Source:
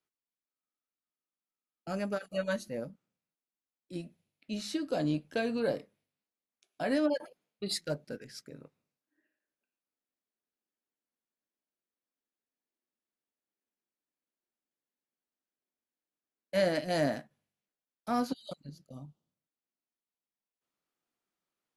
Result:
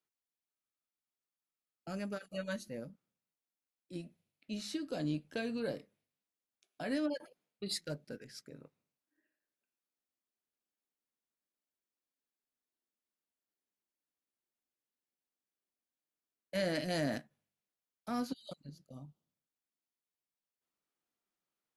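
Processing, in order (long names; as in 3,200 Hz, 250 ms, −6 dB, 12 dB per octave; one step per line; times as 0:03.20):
dynamic equaliser 770 Hz, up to −6 dB, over −43 dBFS, Q 0.82
0:16.55–0:17.18: envelope flattener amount 50%
level −3.5 dB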